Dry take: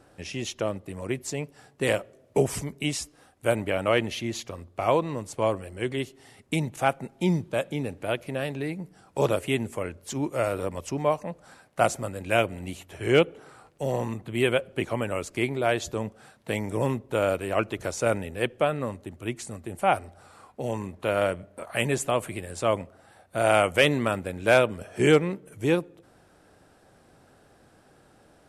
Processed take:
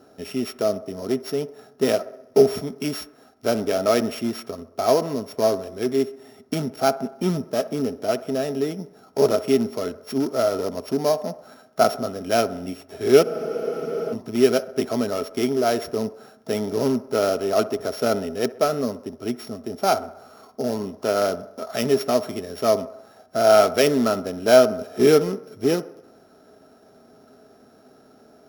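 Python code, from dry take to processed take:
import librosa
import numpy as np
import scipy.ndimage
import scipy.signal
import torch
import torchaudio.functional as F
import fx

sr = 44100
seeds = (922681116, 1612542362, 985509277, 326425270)

p1 = np.r_[np.sort(x[:len(x) // 8 * 8].reshape(-1, 8), axis=1).ravel(), x[len(x) // 8 * 8:]]
p2 = (np.mod(10.0 ** (22.0 / 20.0) * p1 + 1.0, 2.0) - 1.0) / 10.0 ** (22.0 / 20.0)
p3 = p1 + (p2 * 10.0 ** (-12.0 / 20.0))
p4 = fx.low_shelf(p3, sr, hz=96.0, db=-9.5)
p5 = fx.small_body(p4, sr, hz=(250.0, 410.0, 640.0, 1300.0), ring_ms=50, db=14)
p6 = p5 + fx.echo_wet_bandpass(p5, sr, ms=64, feedback_pct=57, hz=820.0, wet_db=-14.5, dry=0)
p7 = fx.spec_freeze(p6, sr, seeds[0], at_s=13.25, hold_s=0.87)
y = p7 * 10.0 ** (-3.0 / 20.0)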